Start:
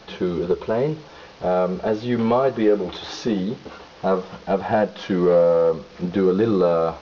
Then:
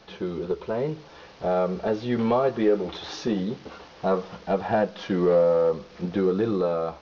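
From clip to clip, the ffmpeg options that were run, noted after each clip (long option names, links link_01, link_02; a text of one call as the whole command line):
ffmpeg -i in.wav -af "dynaudnorm=framelen=390:gausssize=5:maxgain=4.5dB,volume=-7dB" out.wav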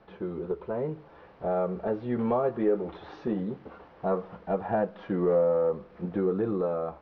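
ffmpeg -i in.wav -af "lowpass=1600,volume=-4dB" out.wav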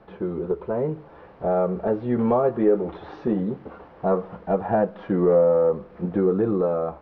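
ffmpeg -i in.wav -af "highshelf=frequency=2100:gain=-7.5,volume=6.5dB" out.wav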